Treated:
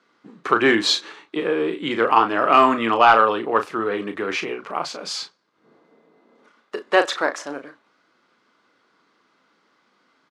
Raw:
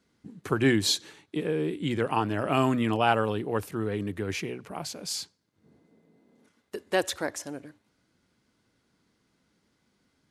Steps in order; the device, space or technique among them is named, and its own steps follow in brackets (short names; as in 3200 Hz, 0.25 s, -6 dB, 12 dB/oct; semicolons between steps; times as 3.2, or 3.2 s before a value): intercom (BPF 370–4300 Hz; bell 1200 Hz +9 dB 0.52 oct; soft clip -10.5 dBFS, distortion -21 dB; doubler 35 ms -8.5 dB); gain +9 dB